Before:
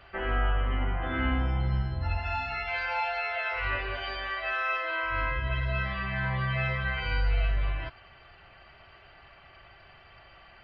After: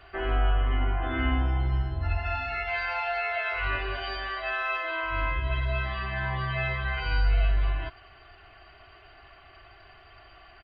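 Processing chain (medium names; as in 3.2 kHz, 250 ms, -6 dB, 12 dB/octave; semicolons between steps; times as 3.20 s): comb 2.8 ms, depth 59%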